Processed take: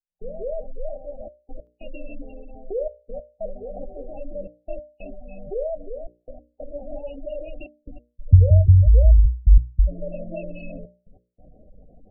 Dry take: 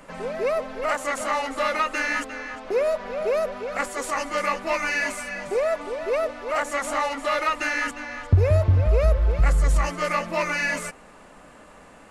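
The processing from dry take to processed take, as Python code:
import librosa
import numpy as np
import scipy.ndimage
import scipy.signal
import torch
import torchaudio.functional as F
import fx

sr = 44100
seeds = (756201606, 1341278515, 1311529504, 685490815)

y = fx.tilt_eq(x, sr, slope=-3.5)
y = fx.step_gate(y, sr, bpm=141, pattern='..xxxxxxxxxx..x', floor_db=-60.0, edge_ms=4.5)
y = scipy.signal.sosfilt(scipy.signal.cheby1(5, 1.0, [770.0, 2600.0], 'bandstop', fs=sr, output='sos'), y)
y = fx.hum_notches(y, sr, base_hz=60, count=10)
y = fx.spec_gate(y, sr, threshold_db=-20, keep='strong')
y = fx.peak_eq(y, sr, hz=270.0, db=fx.steps((0.0, -13.0), (1.67, -4.0)), octaves=0.75)
y = F.gain(torch.from_numpy(y), -5.5).numpy()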